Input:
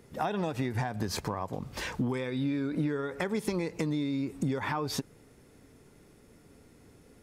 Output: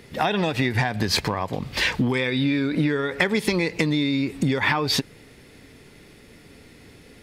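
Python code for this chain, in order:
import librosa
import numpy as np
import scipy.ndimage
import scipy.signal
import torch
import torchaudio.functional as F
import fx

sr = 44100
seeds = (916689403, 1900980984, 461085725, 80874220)

y = fx.band_shelf(x, sr, hz=2900.0, db=8.5, octaves=1.7)
y = y * 10.0 ** (8.0 / 20.0)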